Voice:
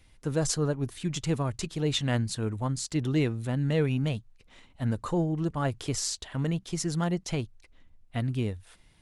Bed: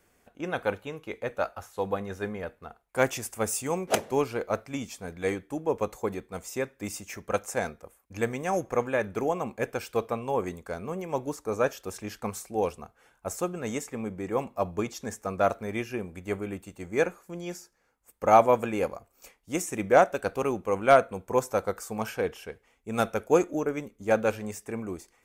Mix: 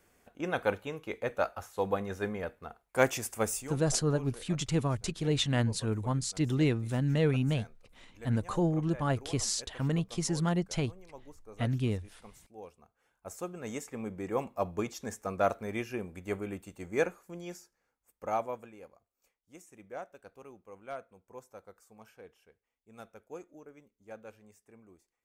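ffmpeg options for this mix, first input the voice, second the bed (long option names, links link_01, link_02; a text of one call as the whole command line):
ffmpeg -i stem1.wav -i stem2.wav -filter_complex "[0:a]adelay=3450,volume=-1dB[link_01];[1:a]volume=15.5dB,afade=type=out:start_time=3.4:duration=0.38:silence=0.112202,afade=type=in:start_time=12.75:duration=1.47:silence=0.149624,afade=type=out:start_time=16.96:duration=1.8:silence=0.105925[link_02];[link_01][link_02]amix=inputs=2:normalize=0" out.wav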